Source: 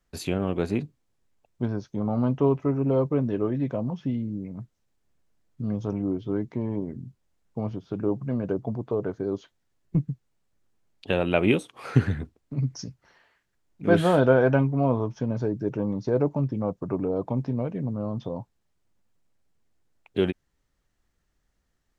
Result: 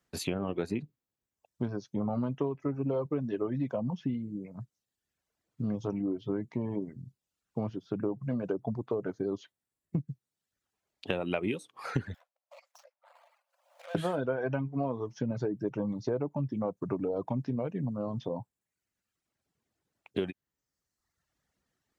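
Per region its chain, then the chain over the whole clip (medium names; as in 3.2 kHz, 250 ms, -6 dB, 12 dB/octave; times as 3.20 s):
12.14–13.95 s: median filter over 25 samples + brick-wall FIR high-pass 510 Hz + three bands compressed up and down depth 100%
whole clip: reverb removal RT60 1 s; high-pass 99 Hz; compression 10:1, threshold -27 dBFS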